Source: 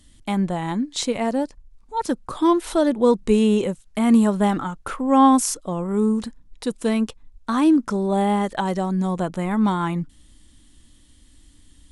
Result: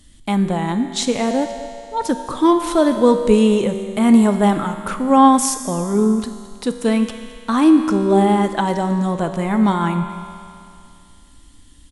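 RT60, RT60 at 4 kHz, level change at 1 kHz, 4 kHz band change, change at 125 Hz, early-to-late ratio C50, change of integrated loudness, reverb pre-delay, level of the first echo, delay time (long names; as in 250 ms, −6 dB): 2.5 s, 2.5 s, +4.5 dB, +4.5 dB, +4.0 dB, 7.5 dB, +4.0 dB, 3 ms, −18.0 dB, 216 ms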